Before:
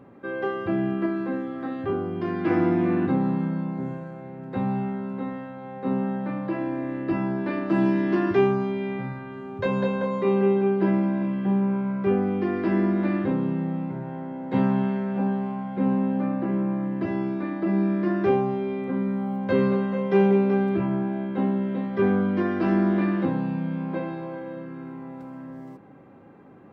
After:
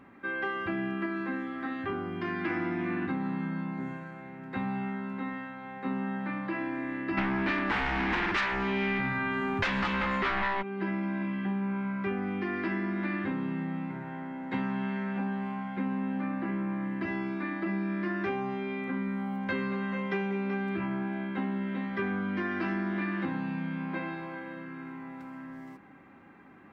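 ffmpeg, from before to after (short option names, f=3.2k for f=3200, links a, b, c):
-filter_complex "[0:a]asplit=3[a][b][c];[a]afade=t=out:st=7.17:d=0.02[d];[b]aeval=exprs='0.355*sin(PI/2*5.01*val(0)/0.355)':c=same,afade=t=in:st=7.17:d=0.02,afade=t=out:st=10.61:d=0.02[e];[c]afade=t=in:st=10.61:d=0.02[f];[d][e][f]amix=inputs=3:normalize=0,equalizer=f=125:t=o:w=1:g=-10,equalizer=f=500:t=o:w=1:g=-11,equalizer=f=2k:t=o:w=1:g=7,acompressor=threshold=-28dB:ratio=6"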